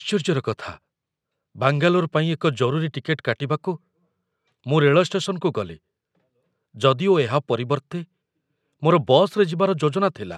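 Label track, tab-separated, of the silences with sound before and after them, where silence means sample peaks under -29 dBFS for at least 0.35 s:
0.740000	1.600000	silence
3.750000	4.670000	silence
5.730000	6.810000	silence
8.020000	8.830000	silence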